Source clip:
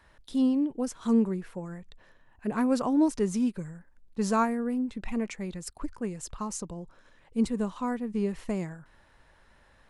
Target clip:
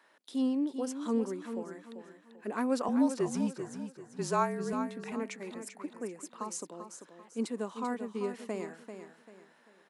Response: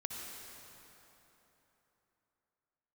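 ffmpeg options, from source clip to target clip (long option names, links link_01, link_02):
-filter_complex "[0:a]highpass=frequency=260:width=0.5412,highpass=frequency=260:width=1.3066,asettb=1/sr,asplit=3[link_01][link_02][link_03];[link_01]atrim=end=2.884[link_04];[link_02]atrim=start=2.88:end=4.73,asetpts=PTS-STARTPTS,afade=type=in:duration=0.004:curve=qsin,afade=type=out:start_time=1.846:duration=0.004:curve=qsin,afreqshift=-38[link_05];[link_03]atrim=start=4.726[link_06];[link_04][link_05]acrossfade=duration=0.004:curve1=hsin:curve2=qsin[link_07];[link_07][link_06]acrossfade=duration=0.004:curve1=qsin:curve2=hsin,asettb=1/sr,asplit=3[link_08][link_09][link_10];[link_08]atrim=end=5.604[link_11];[link_09]atrim=start=5.6:end=6.34,asetpts=PTS-STARTPTS,afade=type=in:duration=0.004:curve=qsin,afade=type=out:start_time=0.736:duration=0.004:curve=qsin,equalizer=frequency=4400:width_type=o:width=1.4:gain=-9[link_12];[link_10]atrim=start=6.336[link_13];[link_11][link_12]acrossfade=duration=0.004:curve1=hsin:curve2=qsin[link_14];[link_14][link_13]acrossfade=duration=0.004:curve1=qsin:curve2=hsin,aecho=1:1:391|782|1173|1564:0.355|0.121|0.041|0.0139,volume=-2.5dB"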